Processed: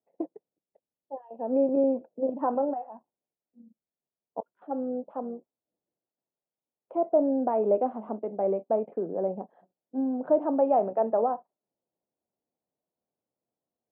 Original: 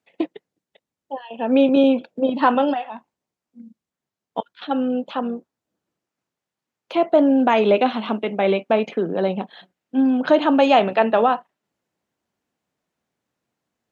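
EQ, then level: ladder low-pass 820 Hz, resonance 25%; low shelf 470 Hz -10.5 dB; +2.0 dB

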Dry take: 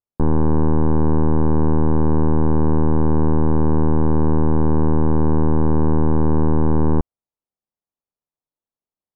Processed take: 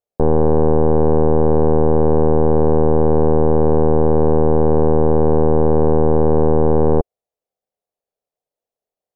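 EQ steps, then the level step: band shelf 560 Hz +12.5 dB 1.1 oct; 0.0 dB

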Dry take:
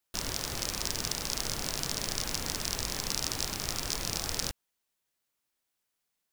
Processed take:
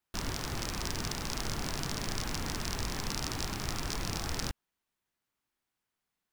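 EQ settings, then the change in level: bell 540 Hz -6 dB 0.74 oct; high shelf 2800 Hz -11.5 dB; +3.5 dB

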